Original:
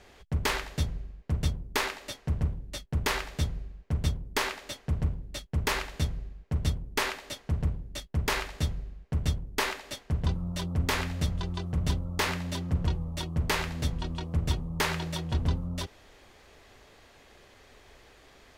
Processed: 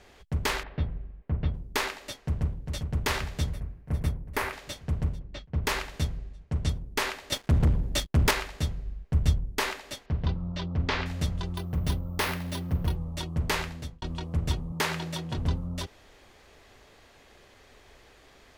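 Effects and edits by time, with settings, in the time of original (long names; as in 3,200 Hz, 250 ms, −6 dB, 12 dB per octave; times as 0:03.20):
0:00.63–0:01.54: Gaussian smoothing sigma 3.1 samples
0:02.26–0:02.80: delay throw 400 ms, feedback 70%, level −5.5 dB
0:03.53–0:04.53: flat-topped bell 4,800 Hz −8.5 dB
0:05.19–0:05.64: high-frequency loss of the air 190 metres
0:06.18–0:06.69: low-pass filter 10,000 Hz 24 dB per octave
0:07.32–0:08.31: leveller curve on the samples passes 3
0:08.85–0:09.52: low-shelf EQ 91 Hz +8.5 dB
0:10.06–0:11.06: low-pass filter 4,900 Hz 24 dB per octave
0:11.57–0:12.96: bad sample-rate conversion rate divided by 3×, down filtered, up hold
0:13.57–0:14.02: fade out
0:14.72–0:15.38: high-pass filter 100 Hz 24 dB per octave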